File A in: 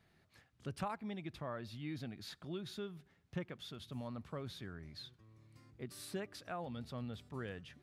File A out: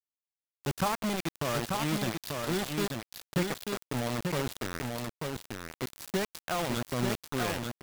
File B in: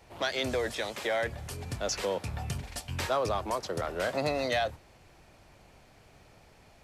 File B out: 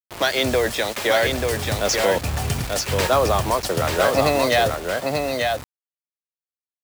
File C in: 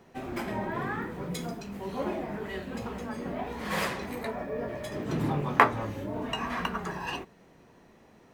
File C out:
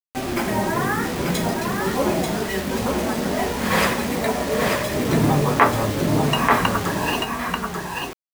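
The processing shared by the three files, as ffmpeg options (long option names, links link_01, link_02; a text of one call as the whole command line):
ffmpeg -i in.wav -filter_complex "[0:a]acrusher=bits=6:mix=0:aa=0.000001,asplit=2[link_01][link_02];[link_02]aecho=0:1:888:0.631[link_03];[link_01][link_03]amix=inputs=2:normalize=0,alimiter=level_in=11.5dB:limit=-1dB:release=50:level=0:latency=1,volume=-1dB" out.wav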